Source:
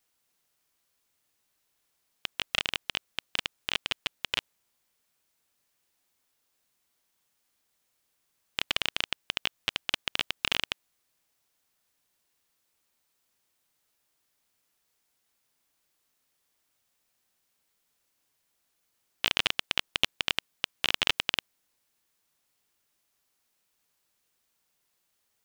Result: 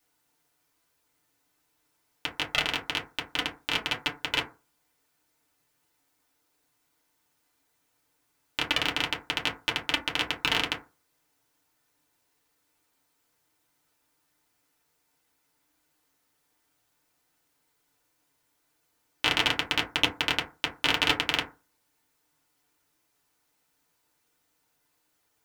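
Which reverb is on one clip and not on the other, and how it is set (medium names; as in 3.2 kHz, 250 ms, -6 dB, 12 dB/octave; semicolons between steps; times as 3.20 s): FDN reverb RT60 0.31 s, low-frequency decay 1.05×, high-frequency decay 0.35×, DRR -4 dB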